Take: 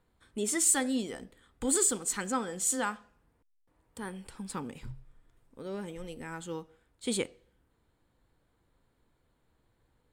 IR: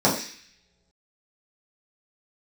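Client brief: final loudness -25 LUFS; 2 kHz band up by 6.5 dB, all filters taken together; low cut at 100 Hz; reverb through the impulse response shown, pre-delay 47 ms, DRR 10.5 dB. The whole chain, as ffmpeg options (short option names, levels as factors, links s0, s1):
-filter_complex "[0:a]highpass=100,equalizer=f=2000:t=o:g=8,asplit=2[s0][s1];[1:a]atrim=start_sample=2205,adelay=47[s2];[s1][s2]afir=irnorm=-1:irlink=0,volume=0.0355[s3];[s0][s3]amix=inputs=2:normalize=0,volume=1.88"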